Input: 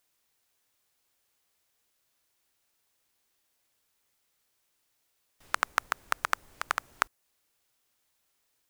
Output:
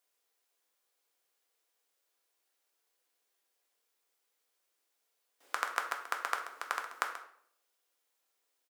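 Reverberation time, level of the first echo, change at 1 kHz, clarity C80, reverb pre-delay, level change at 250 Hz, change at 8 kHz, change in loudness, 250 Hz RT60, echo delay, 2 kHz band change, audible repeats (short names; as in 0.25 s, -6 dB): 0.60 s, -13.5 dB, -4.0 dB, 10.0 dB, 3 ms, -7.0 dB, -5.5 dB, -4.5 dB, 0.75 s, 0.133 s, -4.5 dB, 1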